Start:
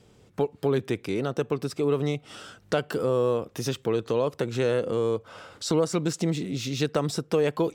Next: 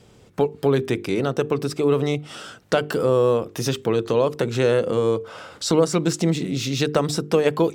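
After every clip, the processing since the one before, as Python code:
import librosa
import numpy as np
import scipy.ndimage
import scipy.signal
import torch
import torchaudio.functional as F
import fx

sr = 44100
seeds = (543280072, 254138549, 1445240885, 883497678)

y = fx.hum_notches(x, sr, base_hz=50, count=9)
y = F.gain(torch.from_numpy(y), 6.0).numpy()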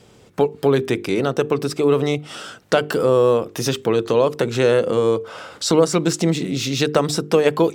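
y = fx.low_shelf(x, sr, hz=140.0, db=-6.0)
y = F.gain(torch.from_numpy(y), 3.5).numpy()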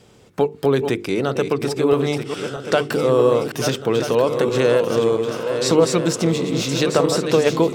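y = fx.reverse_delay_fb(x, sr, ms=642, feedback_pct=68, wet_db=-7.0)
y = F.gain(torch.from_numpy(y), -1.0).numpy()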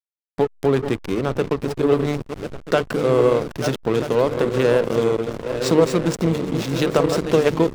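y = fx.backlash(x, sr, play_db=-18.0)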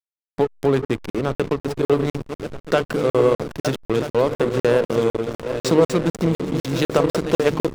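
y = fx.buffer_crackle(x, sr, first_s=0.85, period_s=0.25, block=2048, kind='zero')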